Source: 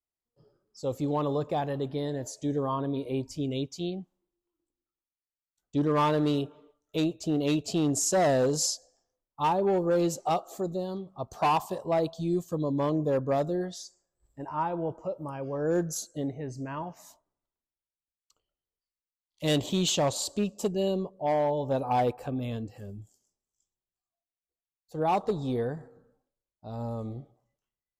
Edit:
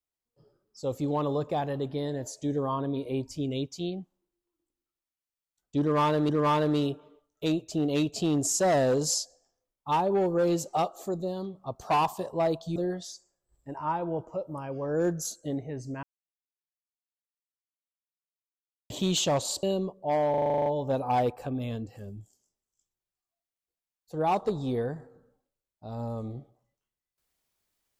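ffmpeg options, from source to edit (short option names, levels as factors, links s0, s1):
-filter_complex "[0:a]asplit=15[s0][s1][s2][s3][s4][s5][s6][s7][s8][s9][s10][s11][s12][s13][s14];[s0]atrim=end=6.292[s15];[s1]atrim=start=5.808:end=12.282[s16];[s2]atrim=start=13.468:end=16.74,asetpts=PTS-STARTPTS,afade=t=out:st=3.268:d=0.004:c=hsin[s17];[s3]atrim=start=16.74:end=19.61,asetpts=PTS-STARTPTS,volume=0[s18];[s4]atrim=start=19.61:end=20.342,asetpts=PTS-STARTPTS,afade=t=in:d=0.004:c=hsin[s19];[s5]atrim=start=20.798:end=21.512[s20];[s6]atrim=start=21.468:end=21.512[s21];[s7]atrim=start=21.468:end=21.512[s22];[s8]atrim=start=21.468:end=21.512[s23];[s9]atrim=start=21.468:end=21.512[s24];[s10]atrim=start=21.468:end=21.512[s25];[s11]atrim=start=21.468:end=21.512[s26];[s12]atrim=start=21.468:end=21.512[s27];[s13]atrim=start=21.468:end=21.512[s28];[s14]atrim=start=21.468[s29];[s15][s16]acrossfade=d=0.004:c1=hsin:c2=hsin[s30];[s17][s18][s19]concat=n=3:v=0:a=1[s31];[s30][s31]acrossfade=d=0.004:c1=hsin:c2=hsin[s32];[s32][s20]acrossfade=d=0.004:c1=hsin:c2=hsin[s33];[s33][s21]acrossfade=d=0.004:c1=hsin:c2=hsin[s34];[s34][s22]acrossfade=d=0.004:c1=hsin:c2=hsin[s35];[s35][s23]acrossfade=d=0.004:c1=hsin:c2=hsin[s36];[s36][s24]acrossfade=d=0.004:c1=hsin:c2=hsin[s37];[s37][s25]acrossfade=d=0.004:c1=hsin:c2=hsin[s38];[s38][s26]acrossfade=d=0.004:c1=hsin:c2=hsin[s39];[s39][s27]acrossfade=d=0.004:c1=hsin:c2=hsin[s40];[s40][s28]acrossfade=d=0.004:c1=hsin:c2=hsin[s41];[s41][s29]acrossfade=d=0.004:c1=hsin:c2=hsin"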